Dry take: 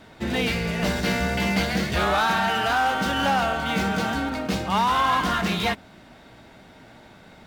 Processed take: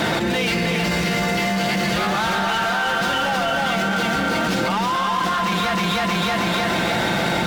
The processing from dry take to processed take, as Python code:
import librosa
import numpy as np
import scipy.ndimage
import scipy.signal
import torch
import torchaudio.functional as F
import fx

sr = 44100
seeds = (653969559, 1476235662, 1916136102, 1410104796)

p1 = scipy.signal.sosfilt(scipy.signal.butter(2, 48.0, 'highpass', fs=sr, output='sos'), x)
p2 = fx.low_shelf(p1, sr, hz=170.0, db=-5.5)
p3 = p2 + 0.51 * np.pad(p2, (int(5.8 * sr / 1000.0), 0))[:len(p2)]
p4 = 10.0 ** (-20.5 / 20.0) * np.tanh(p3 / 10.0 ** (-20.5 / 20.0))
p5 = p4 + fx.echo_feedback(p4, sr, ms=314, feedback_pct=40, wet_db=-3, dry=0)
y = fx.env_flatten(p5, sr, amount_pct=100)